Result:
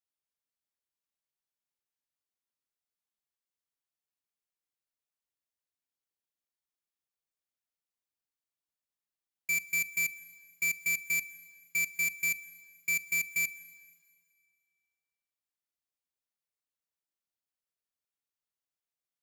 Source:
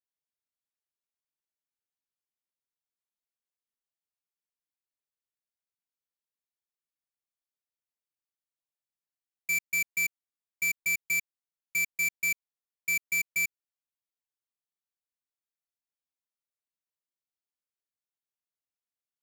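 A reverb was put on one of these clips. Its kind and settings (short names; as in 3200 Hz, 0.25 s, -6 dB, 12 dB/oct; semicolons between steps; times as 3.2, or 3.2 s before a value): Schroeder reverb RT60 2 s, combs from 31 ms, DRR 16.5 dB; gain -1.5 dB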